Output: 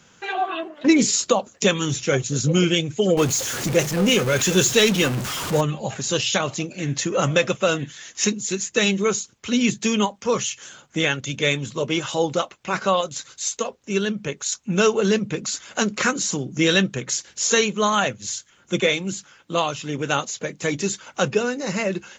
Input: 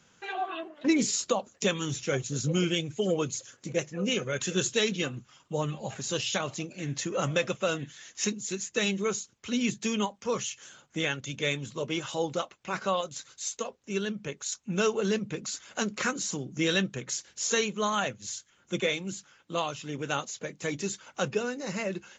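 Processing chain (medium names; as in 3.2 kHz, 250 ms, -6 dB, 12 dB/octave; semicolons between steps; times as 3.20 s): 3.17–5.61 s: jump at every zero crossing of -31 dBFS; trim +8.5 dB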